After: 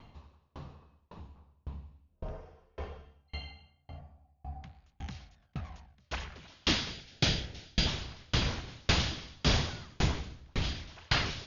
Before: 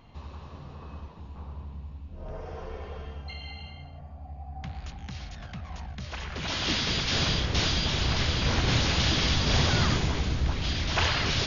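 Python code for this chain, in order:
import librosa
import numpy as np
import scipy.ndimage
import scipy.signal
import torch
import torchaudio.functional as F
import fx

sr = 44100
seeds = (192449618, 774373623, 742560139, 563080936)

y = fx.peak_eq(x, sr, hz=1100.0, db=-14.5, octaves=0.29, at=(6.95, 7.87))
y = fx.tremolo_decay(y, sr, direction='decaying', hz=1.8, depth_db=38)
y = y * librosa.db_to_amplitude(3.0)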